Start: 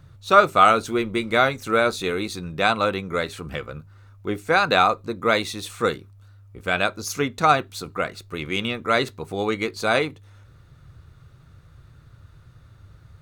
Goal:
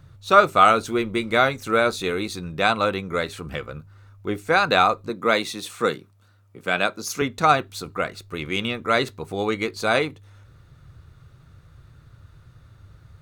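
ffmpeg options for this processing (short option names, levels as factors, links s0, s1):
-filter_complex "[0:a]asettb=1/sr,asplit=3[s0][s1][s2];[s0]atrim=end=5.094[s3];[s1]atrim=start=5.09:end=7.22,asetpts=PTS-STARTPTS,afade=t=in:d=0.004:c=qsin,afade=t=out:st=2.126:d=0.004:c=qsin,highpass=f=130:w=0.5412,highpass=f=130:w=1.3066[s4];[s2]atrim=start=7.216[s5];[s3][s4]acrossfade=d=0.004:c1=hsin:c2=qsin[s6];[s6][s5]acrossfade=d=0.004:c1=qsin:c2=hsin"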